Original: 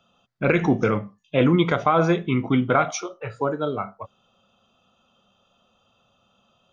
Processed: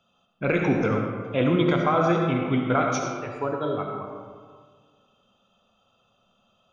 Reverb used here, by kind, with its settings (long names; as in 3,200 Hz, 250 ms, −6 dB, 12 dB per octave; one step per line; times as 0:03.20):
comb and all-pass reverb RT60 1.8 s, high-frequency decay 0.5×, pre-delay 30 ms, DRR 1.5 dB
level −4.5 dB